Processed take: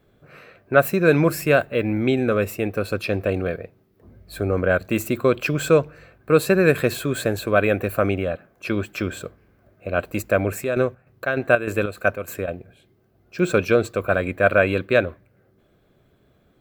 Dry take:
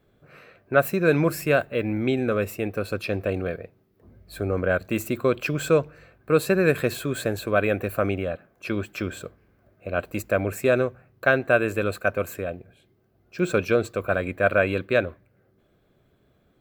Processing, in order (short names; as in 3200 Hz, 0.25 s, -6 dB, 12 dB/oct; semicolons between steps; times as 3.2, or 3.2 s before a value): 10.46–12.48 chopper 3.3 Hz, depth 60%, duty 60%; gain +3.5 dB